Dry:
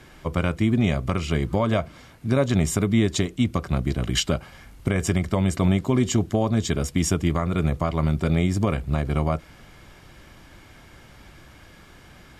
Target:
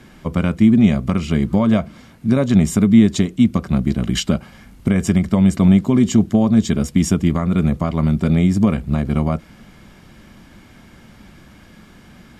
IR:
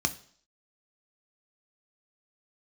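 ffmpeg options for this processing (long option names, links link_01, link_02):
-af "equalizer=frequency=210:width_type=o:width=0.66:gain=12,volume=1dB"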